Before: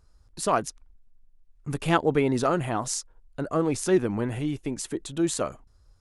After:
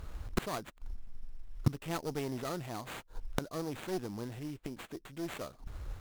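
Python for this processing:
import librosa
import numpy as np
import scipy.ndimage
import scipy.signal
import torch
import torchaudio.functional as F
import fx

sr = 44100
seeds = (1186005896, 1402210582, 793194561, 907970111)

y = fx.sample_hold(x, sr, seeds[0], rate_hz=5400.0, jitter_pct=20)
y = fx.clip_asym(y, sr, top_db=-26.5, bottom_db=-11.5)
y = fx.gate_flip(y, sr, shuts_db=-32.0, range_db=-29)
y = F.gain(torch.from_numpy(y), 16.5).numpy()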